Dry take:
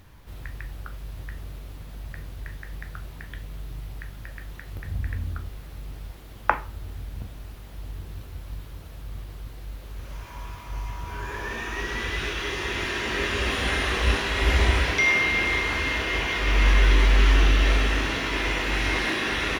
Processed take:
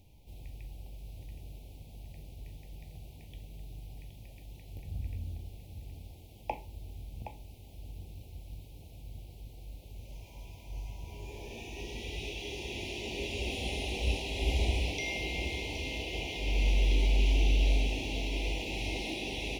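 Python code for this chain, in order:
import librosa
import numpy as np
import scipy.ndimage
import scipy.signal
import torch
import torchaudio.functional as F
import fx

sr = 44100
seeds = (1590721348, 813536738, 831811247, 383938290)

p1 = scipy.signal.sosfilt(scipy.signal.ellip(3, 1.0, 70, [820.0, 2400.0], 'bandstop', fs=sr, output='sos'), x)
p2 = fx.peak_eq(p1, sr, hz=1500.0, db=-5.0, octaves=0.32)
p3 = p2 + fx.echo_single(p2, sr, ms=769, db=-10.0, dry=0)
y = p3 * librosa.db_to_amplitude(-8.0)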